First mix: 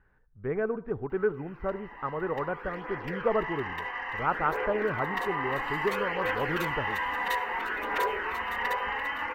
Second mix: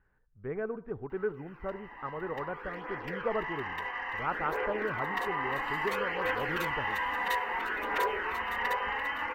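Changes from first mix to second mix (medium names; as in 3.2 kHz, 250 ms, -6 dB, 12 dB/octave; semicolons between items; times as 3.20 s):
speech -5.5 dB; background: send -9.5 dB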